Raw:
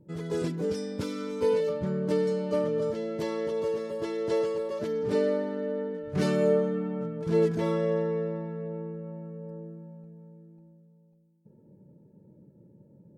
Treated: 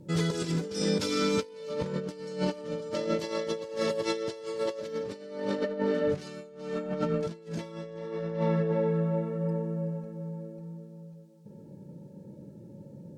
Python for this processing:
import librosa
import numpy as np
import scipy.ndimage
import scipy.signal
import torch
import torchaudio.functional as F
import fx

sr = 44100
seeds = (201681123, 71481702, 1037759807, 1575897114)

y = fx.peak_eq(x, sr, hz=5200.0, db=11.5, octaves=2.5)
y = fx.echo_tape(y, sr, ms=377, feedback_pct=46, wet_db=-8.5, lp_hz=3500.0, drive_db=18.0, wow_cents=29)
y = fx.rev_fdn(y, sr, rt60_s=0.82, lf_ratio=1.0, hf_ratio=0.9, size_ms=11.0, drr_db=9.0)
y = fx.over_compress(y, sr, threshold_db=-32.0, ratio=-0.5)
y = y * librosa.db_to_amplitude(1.5)